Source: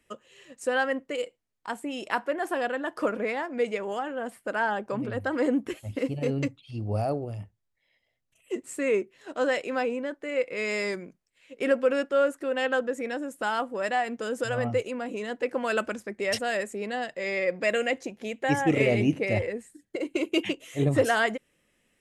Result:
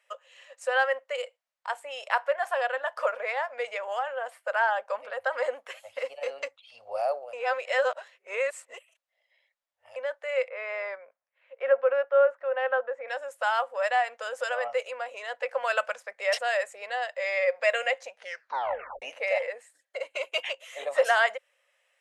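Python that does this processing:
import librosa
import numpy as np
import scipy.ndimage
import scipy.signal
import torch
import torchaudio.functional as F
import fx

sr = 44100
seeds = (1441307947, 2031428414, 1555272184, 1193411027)

y = fx.lowpass(x, sr, hz=1600.0, slope=12, at=(10.48, 13.08))
y = fx.edit(y, sr, fx.reverse_span(start_s=7.33, length_s=2.63),
    fx.tape_stop(start_s=18.13, length_s=0.89), tone=tone)
y = scipy.signal.sosfilt(scipy.signal.ellip(4, 1.0, 40, 540.0, 'highpass', fs=sr, output='sos'), y)
y = fx.high_shelf(y, sr, hz=7400.0, db=-11.0)
y = y * librosa.db_to_amplitude(3.0)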